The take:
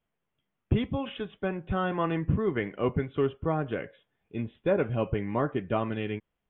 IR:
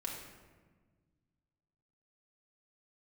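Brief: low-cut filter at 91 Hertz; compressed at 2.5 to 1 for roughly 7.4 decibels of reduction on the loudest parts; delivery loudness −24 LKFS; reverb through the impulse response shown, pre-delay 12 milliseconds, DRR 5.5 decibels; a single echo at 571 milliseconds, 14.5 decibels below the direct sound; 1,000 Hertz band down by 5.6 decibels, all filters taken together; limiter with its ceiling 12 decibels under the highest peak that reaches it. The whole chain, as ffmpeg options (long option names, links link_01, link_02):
-filter_complex "[0:a]highpass=91,equalizer=frequency=1000:width_type=o:gain=-7.5,acompressor=threshold=-33dB:ratio=2.5,alimiter=level_in=7.5dB:limit=-24dB:level=0:latency=1,volume=-7.5dB,aecho=1:1:571:0.188,asplit=2[link_01][link_02];[1:a]atrim=start_sample=2205,adelay=12[link_03];[link_02][link_03]afir=irnorm=-1:irlink=0,volume=-6dB[link_04];[link_01][link_04]amix=inputs=2:normalize=0,volume=16.5dB"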